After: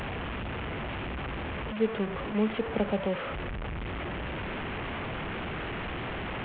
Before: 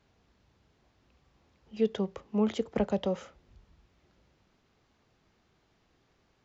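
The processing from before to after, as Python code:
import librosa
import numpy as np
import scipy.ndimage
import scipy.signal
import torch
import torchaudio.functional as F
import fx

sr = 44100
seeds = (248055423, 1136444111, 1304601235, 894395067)

y = fx.delta_mod(x, sr, bps=16000, step_db=-28.5)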